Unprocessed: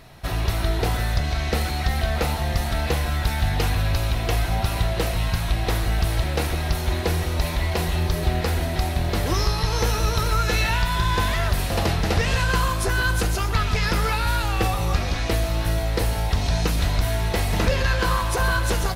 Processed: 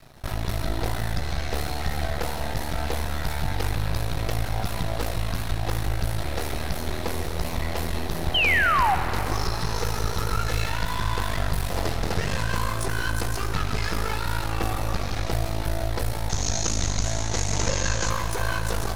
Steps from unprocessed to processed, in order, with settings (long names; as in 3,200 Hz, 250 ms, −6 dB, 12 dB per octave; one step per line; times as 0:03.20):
parametric band 2,700 Hz −3.5 dB 0.77 octaves
in parallel at −2 dB: brickwall limiter −20 dBFS, peak gain reduction 9.5 dB
on the sum: half-wave rectification
0:08.34–0:08.95: sound drawn into the spectrogram fall 720–3,200 Hz −17 dBFS
0:16.29–0:18.10: low-pass with resonance 6,600 Hz, resonance Q 8.7
dense smooth reverb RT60 3.9 s, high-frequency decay 0.7×, DRR 7.5 dB
level −4 dB